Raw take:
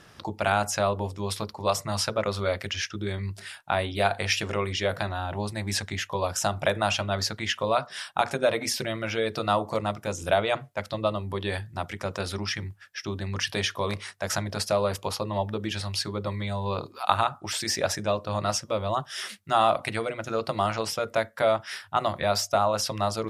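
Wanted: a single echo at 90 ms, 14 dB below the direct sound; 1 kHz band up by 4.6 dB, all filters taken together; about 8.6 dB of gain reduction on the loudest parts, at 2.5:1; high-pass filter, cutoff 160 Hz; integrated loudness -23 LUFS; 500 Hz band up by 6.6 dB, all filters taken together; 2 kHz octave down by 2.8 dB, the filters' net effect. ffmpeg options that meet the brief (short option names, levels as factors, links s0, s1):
-af "highpass=160,equalizer=f=500:t=o:g=7,equalizer=f=1000:t=o:g=5,equalizer=f=2000:t=o:g=-6.5,acompressor=threshold=0.0562:ratio=2.5,aecho=1:1:90:0.2,volume=2"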